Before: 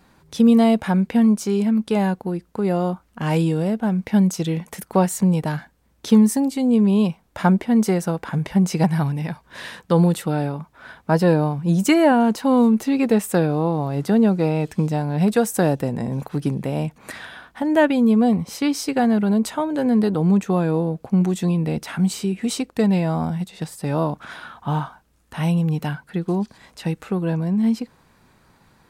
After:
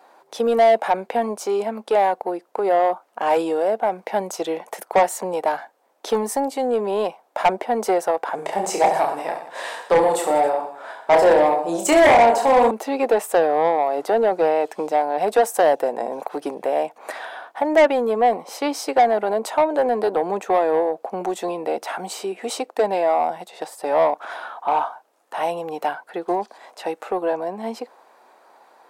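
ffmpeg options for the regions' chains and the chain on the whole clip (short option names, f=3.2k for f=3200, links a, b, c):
-filter_complex "[0:a]asettb=1/sr,asplit=3[a][b][c];[a]atrim=end=8.354[d];[b]atrim=start=8.35:end=12.71,asetpts=PTS-STARTPTS,afade=t=in:d=0.004:c=qsin,afade=t=out:st=4.356:d=0.004:c=qsin,equalizer=f=7.8k:t=o:w=0.42:g=9,bandreject=f=1.5k:w=24,aecho=1:1:30|69|119.7|185.6|271.3:0.631|0.398|0.251|0.158|0.1,atrim=end_sample=192276[e];[c]atrim=start=12.706[f];[d][e]acrossfade=d=0.004:c1=hsin:c2=qsin[g];[g][f]acrossfade=d=0.004:c1=qsin:c2=hsin,highpass=f=340:w=0.5412,highpass=f=340:w=1.3066,equalizer=f=720:t=o:w=1.4:g=15,acontrast=60,volume=-8.5dB"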